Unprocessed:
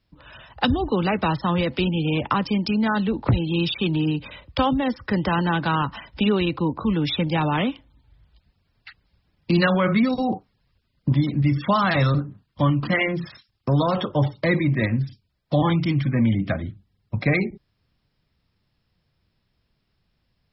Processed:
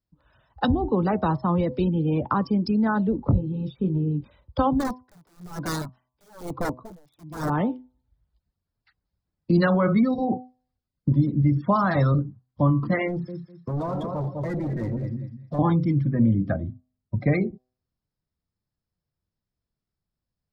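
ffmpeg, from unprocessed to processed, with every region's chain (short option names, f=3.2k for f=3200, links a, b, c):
-filter_complex "[0:a]asettb=1/sr,asplit=3[a][b][c];[a]atrim=end=3.164[d];[b]atrim=start=3.16:end=4.24,asetpts=PTS-STARTPTS,afade=t=in:d=0.004:c=qsin,afade=t=out:st=1.076:d=0.004:c=qsin,equalizer=f=4.3k:w=0.31:g=-10.5,bandreject=f=340:w=7.9,asplit=2[e][f];[f]adelay=21,volume=-7dB[g];[e][g]amix=inputs=2:normalize=0,atrim=end_sample=47628[h];[c]atrim=start=4.236[i];[d][h]acrossfade=d=0.004:c1=hsin:c2=qsin[j];[j][i]acrossfade=d=0.004:c1=qsin:c2=hsin,asettb=1/sr,asplit=3[k][l][m];[k]atrim=end=4.804[n];[l]atrim=start=4.8:end=7.5,asetpts=PTS-STARTPTS,afade=t=in:d=0.004:c=qsin,afade=t=out:st=2.696:d=0.004:c=qsin,aeval=exprs='(mod(7.5*val(0)+1,2)-1)/7.5':c=same,aeval=exprs='val(0)*pow(10,-23*(0.5-0.5*cos(2*PI*1.1*n/s))/20)':c=same[o];[m]atrim=start=7.496[p];[n][o]acrossfade=d=0.004:c1=hsin:c2=qsin[q];[q][p]acrossfade=d=0.004:c1=qsin:c2=hsin,asettb=1/sr,asplit=3[r][s][t];[r]atrim=end=13.084[u];[s]atrim=start=13.08:end=15.59,asetpts=PTS-STARTPTS,afade=t=in:d=0.004:c=qsin,afade=t=out:st=2.506:d=0.004:c=qsin,aecho=1:1:201|402|603|804:0.398|0.127|0.0408|0.013,atrim=end_sample=110691,asoftclip=type=hard:threshold=-25dB[v];[t]atrim=start=15.586[w];[u][v]acrossfade=d=0.004:c1=hsin:c2=qsin[x];[x][w]acrossfade=d=0.004:c1=qsin:c2=hsin,equalizer=f=2.7k:w=1.2:g=-11,bandreject=f=126.5:t=h:w=4,bandreject=f=253:t=h:w=4,bandreject=f=379.5:t=h:w=4,bandreject=f=506:t=h:w=4,bandreject=f=632.5:t=h:w=4,bandreject=f=759:t=h:w=4,bandreject=f=885.5:t=h:w=4,bandreject=f=1.012k:t=h:w=4,bandreject=f=1.1385k:t=h:w=4,afftdn=nr=15:nf=-31"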